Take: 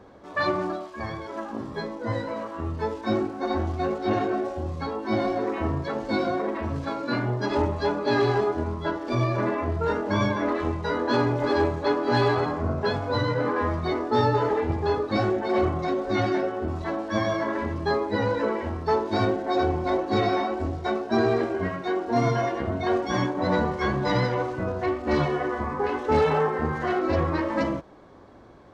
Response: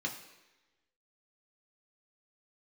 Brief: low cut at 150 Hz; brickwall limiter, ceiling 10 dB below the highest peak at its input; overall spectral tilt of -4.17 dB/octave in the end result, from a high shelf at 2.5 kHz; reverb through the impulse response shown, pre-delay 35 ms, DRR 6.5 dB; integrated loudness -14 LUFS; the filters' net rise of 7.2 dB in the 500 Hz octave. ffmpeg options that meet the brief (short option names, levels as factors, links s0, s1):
-filter_complex "[0:a]highpass=150,equalizer=f=500:t=o:g=9,highshelf=f=2500:g=8,alimiter=limit=0.168:level=0:latency=1,asplit=2[s0][s1];[1:a]atrim=start_sample=2205,adelay=35[s2];[s1][s2]afir=irnorm=-1:irlink=0,volume=0.335[s3];[s0][s3]amix=inputs=2:normalize=0,volume=2.99"